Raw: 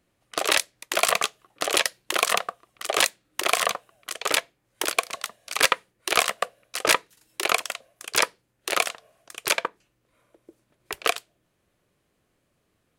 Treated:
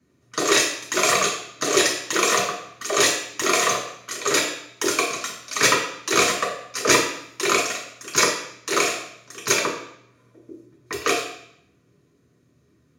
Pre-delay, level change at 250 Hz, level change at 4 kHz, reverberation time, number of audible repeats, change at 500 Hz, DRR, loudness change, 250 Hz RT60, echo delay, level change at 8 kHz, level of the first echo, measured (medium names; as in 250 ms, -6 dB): 3 ms, +12.0 dB, +2.0 dB, 0.70 s, no echo, +6.5 dB, -5.5 dB, +3.5 dB, 0.80 s, no echo, +6.5 dB, no echo